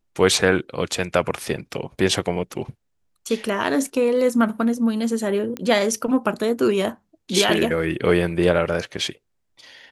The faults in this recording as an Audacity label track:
5.570000	5.570000	click −14 dBFS

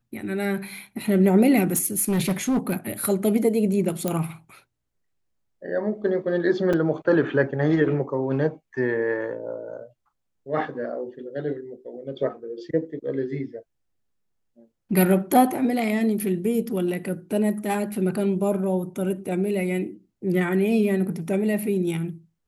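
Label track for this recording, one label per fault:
1.730000	2.740000	clipping −18 dBFS
4.080000	4.080000	click −10 dBFS
6.730000	6.740000	drop-out 5.2 ms

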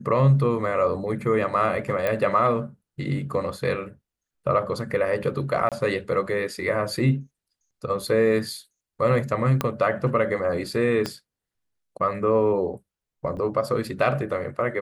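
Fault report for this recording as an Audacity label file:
2.070000	2.070000	click −12 dBFS
5.690000	5.720000	drop-out 27 ms
9.610000	9.610000	click −9 dBFS
11.060000	11.060000	click −13 dBFS
13.370000	13.370000	drop-out 2.3 ms

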